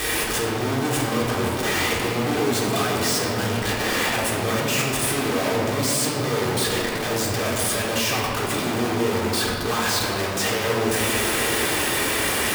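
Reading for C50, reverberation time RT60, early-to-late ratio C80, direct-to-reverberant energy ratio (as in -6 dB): 0.5 dB, 2.5 s, 2.5 dB, -5.0 dB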